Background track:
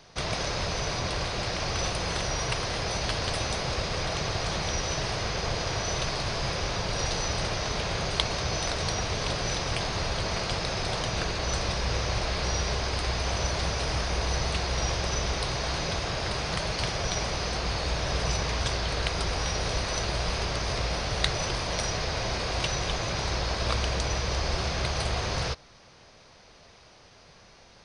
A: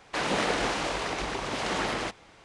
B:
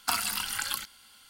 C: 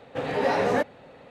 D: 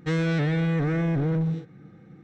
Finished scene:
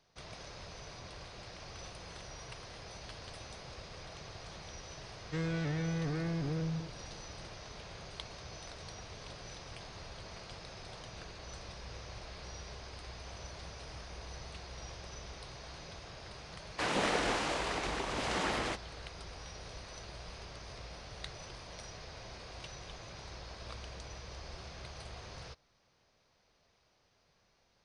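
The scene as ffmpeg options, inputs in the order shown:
-filter_complex "[0:a]volume=-18.5dB[a];[4:a]atrim=end=2.23,asetpts=PTS-STARTPTS,volume=-11dB,afade=t=in:d=0.004:c=hsin,afade=t=out:st=2.226:d=0.004:c=hsin,adelay=5260[b];[1:a]atrim=end=2.44,asetpts=PTS-STARTPTS,volume=-4.5dB,afade=t=in:d=0.004:c=hsin,afade=t=out:st=2.436:d=0.004:c=hsin,adelay=16650[c];[a][b][c]amix=inputs=3:normalize=0"

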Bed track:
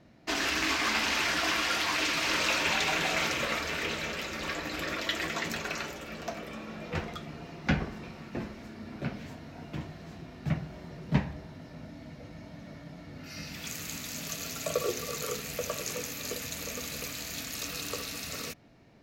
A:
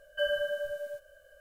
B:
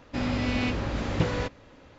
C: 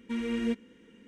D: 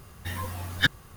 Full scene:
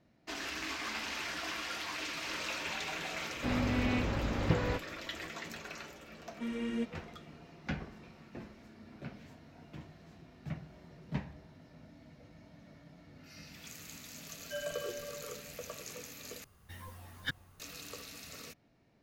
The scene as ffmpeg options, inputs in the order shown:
-filter_complex "[0:a]volume=-10.5dB[a];[2:a]acrossover=split=2900[b][c];[c]acompressor=threshold=-48dB:ratio=4:attack=1:release=60[d];[b][d]amix=inputs=2:normalize=0[e];[1:a]aecho=1:1:221:0.473[f];[4:a]asplit=2[g][h];[h]adelay=361.5,volume=-10dB,highshelf=f=4k:g=-8.13[i];[g][i]amix=inputs=2:normalize=0[j];[a]asplit=2[k][l];[k]atrim=end=16.444[m];[j]atrim=end=1.16,asetpts=PTS-STARTPTS,volume=-15dB[n];[l]atrim=start=17.596[o];[e]atrim=end=1.98,asetpts=PTS-STARTPTS,volume=-4dB,afade=t=in:d=0.004:c=hsin,afade=t=out:st=1.976:d=0.004:c=hsin,adelay=3300[p];[3:a]atrim=end=1.07,asetpts=PTS-STARTPTS,volume=-5.5dB,afade=t=in:d=0.004:c=hsin,afade=t=out:st=1.066:d=0.004:c=hsin,adelay=6310[q];[f]atrim=end=1.4,asetpts=PTS-STARTPTS,volume=-11dB,afade=t=in:d=0.004:c=hsin,afade=t=out:st=1.396:d=0.004:c=hsin,adelay=14330[r];[m][n]acrossfade=d=0.004:c1=hsin:c2=hsin[s];[s][o]acrossfade=d=0.004:c1=hsin:c2=hsin[t];[t][p][q][r]amix=inputs=4:normalize=0"

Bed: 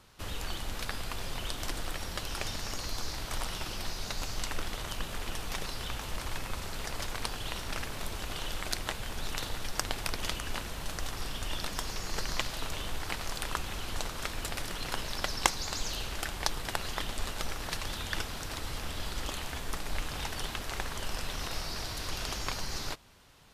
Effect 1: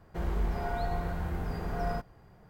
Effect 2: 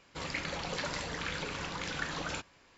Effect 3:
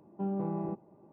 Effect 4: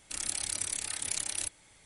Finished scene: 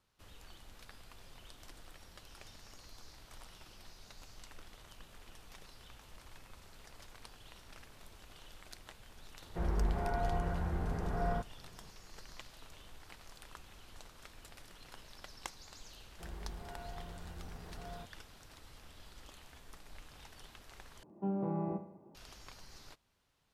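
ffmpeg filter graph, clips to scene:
-filter_complex "[1:a]asplit=2[a][b];[0:a]volume=-18.5dB[c];[a]lowpass=2.1k[d];[3:a]aecho=1:1:68|136|204|272|340:0.282|0.132|0.0623|0.0293|0.0138[e];[c]asplit=2[f][g];[f]atrim=end=21.034[h];[e]atrim=end=1.12,asetpts=PTS-STARTPTS,volume=-1.5dB[i];[g]atrim=start=22.146[j];[d]atrim=end=2.49,asetpts=PTS-STARTPTS,volume=-2dB,afade=t=in:d=0.004:c=hsin,afade=t=out:st=2.486:d=0.004:c=hsin,adelay=9410[k];[b]atrim=end=2.49,asetpts=PTS-STARTPTS,volume=-15dB,afade=t=in:d=0.004:c=hsin,afade=t=out:st=2.486:d=0.004:c=hsin,adelay=16050[l];[h][i]acrossfade=d=0.004:c1=hsin:c2=hsin[m];[m][j]acrossfade=d=0.004:c1=hsin:c2=hsin[n];[n][k][l]amix=inputs=3:normalize=0"

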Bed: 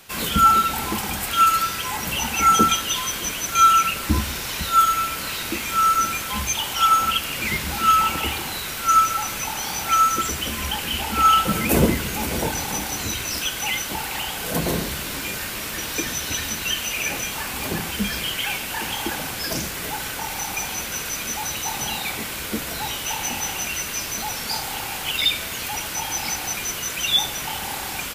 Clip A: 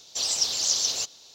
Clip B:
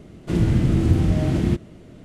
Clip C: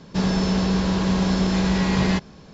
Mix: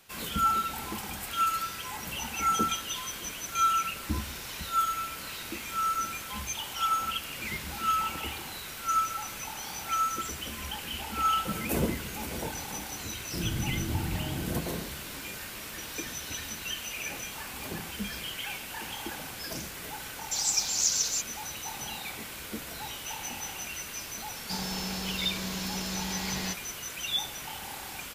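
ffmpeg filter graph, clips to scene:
-filter_complex "[0:a]volume=-11dB[a];[1:a]equalizer=f=7.2k:w=1.4:g=13[b];[3:a]crystalizer=i=6:c=0[c];[2:a]atrim=end=2.04,asetpts=PTS-STARTPTS,volume=-14dB,afade=t=in:d=0.004:c=hsin,afade=t=out:st=2.036:d=0.004:c=hsin,adelay=13040[d];[b]atrim=end=1.34,asetpts=PTS-STARTPTS,volume=-11dB,afade=t=in:d=0.004:c=hsin,afade=t=out:st=1.336:d=0.004:c=hsin,adelay=20160[e];[c]atrim=end=2.53,asetpts=PTS-STARTPTS,volume=-17dB,afade=t=in:d=0.004:c=hsin,afade=t=out:st=2.526:d=0.004:c=hsin,adelay=24350[f];[a][d][e][f]amix=inputs=4:normalize=0"

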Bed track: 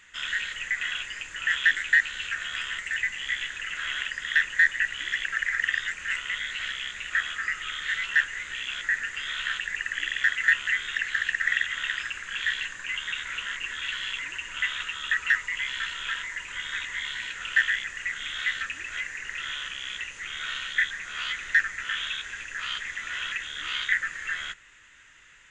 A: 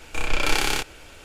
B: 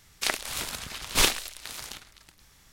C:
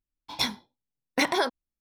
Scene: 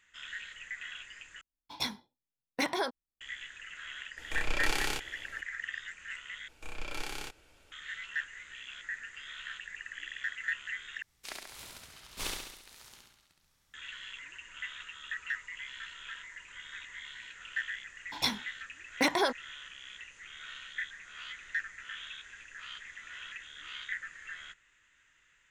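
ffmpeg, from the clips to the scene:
-filter_complex "[3:a]asplit=2[a][b];[1:a]asplit=2[c][d];[0:a]volume=-13dB[e];[2:a]aecho=1:1:68|136|204|272|340|408|476|544:0.708|0.396|0.222|0.124|0.0696|0.039|0.0218|0.0122[f];[e]asplit=4[g][h][i][j];[g]atrim=end=1.414[k];[a]atrim=end=1.8,asetpts=PTS-STARTPTS,volume=-7dB[l];[h]atrim=start=3.206:end=6.484[m];[d]atrim=end=1.24,asetpts=PTS-STARTPTS,volume=-17dB[n];[i]atrim=start=7.716:end=11.024[o];[f]atrim=end=2.72,asetpts=PTS-STARTPTS,volume=-17dB[p];[j]atrim=start=13.736[q];[c]atrim=end=1.24,asetpts=PTS-STARTPTS,volume=-9.5dB,afade=t=in:d=0.004:c=hsin,afade=t=out:st=1.236:d=0.004:c=hsin,adelay=183897S[r];[b]atrim=end=1.8,asetpts=PTS-STARTPTS,volume=-3dB,afade=t=in:d=0.004:c=hsin,afade=t=out:st=1.796:d=0.004:c=hsin,adelay=17830[s];[k][l]acrossfade=d=0.004:c1=hsin:c2=hsin[t];[t][m]acrossfade=d=0.004:c1=hsin:c2=hsin[u];[u][n]acrossfade=d=0.004:c1=hsin:c2=hsin[v];[v][o]acrossfade=d=0.004:c1=hsin:c2=hsin[w];[w][p]acrossfade=d=0.004:c1=hsin:c2=hsin[x];[x][q]acrossfade=d=0.004:c1=hsin:c2=hsin[y];[y][r][s]amix=inputs=3:normalize=0"

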